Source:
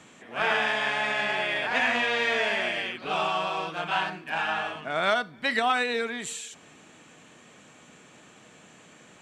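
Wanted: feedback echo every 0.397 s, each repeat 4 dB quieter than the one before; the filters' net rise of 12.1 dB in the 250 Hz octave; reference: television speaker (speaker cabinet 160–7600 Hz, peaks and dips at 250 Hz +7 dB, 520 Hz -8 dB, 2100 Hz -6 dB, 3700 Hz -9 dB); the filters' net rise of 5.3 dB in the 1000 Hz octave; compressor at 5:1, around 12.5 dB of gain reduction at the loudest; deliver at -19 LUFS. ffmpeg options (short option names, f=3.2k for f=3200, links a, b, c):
-af "equalizer=f=250:t=o:g=8,equalizer=f=1k:t=o:g=7.5,acompressor=threshold=-29dB:ratio=5,highpass=f=160:w=0.5412,highpass=f=160:w=1.3066,equalizer=f=250:t=q:w=4:g=7,equalizer=f=520:t=q:w=4:g=-8,equalizer=f=2.1k:t=q:w=4:g=-6,equalizer=f=3.7k:t=q:w=4:g=-9,lowpass=f=7.6k:w=0.5412,lowpass=f=7.6k:w=1.3066,aecho=1:1:397|794|1191|1588|1985|2382|2779|3176|3573:0.631|0.398|0.25|0.158|0.0994|0.0626|0.0394|0.0249|0.0157,volume=12dB"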